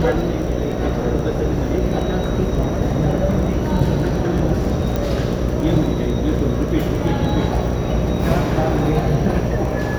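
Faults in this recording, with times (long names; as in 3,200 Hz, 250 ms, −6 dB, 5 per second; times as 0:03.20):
mains buzz 60 Hz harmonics 10 −23 dBFS
surface crackle 13 per second −24 dBFS
0:04.96: click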